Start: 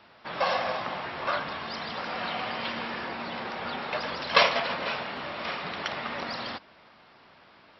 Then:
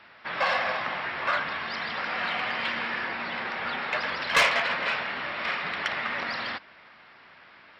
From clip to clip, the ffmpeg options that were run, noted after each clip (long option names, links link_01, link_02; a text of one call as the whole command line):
ffmpeg -i in.wav -af "equalizer=frequency=1900:width_type=o:width=1.4:gain=10.5,asoftclip=type=tanh:threshold=-12dB,volume=-2.5dB" out.wav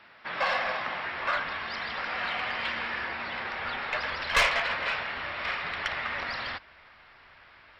ffmpeg -i in.wav -af "asubboost=boost=9.5:cutoff=64,volume=-2dB" out.wav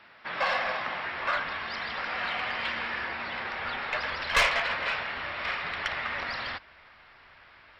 ffmpeg -i in.wav -af anull out.wav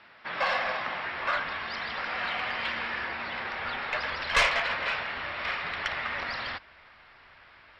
ffmpeg -i in.wav -af "lowpass=10000" out.wav